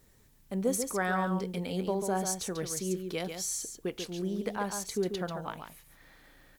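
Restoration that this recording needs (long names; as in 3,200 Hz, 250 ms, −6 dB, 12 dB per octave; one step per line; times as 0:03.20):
downward expander −51 dBFS, range −21 dB
echo removal 140 ms −7 dB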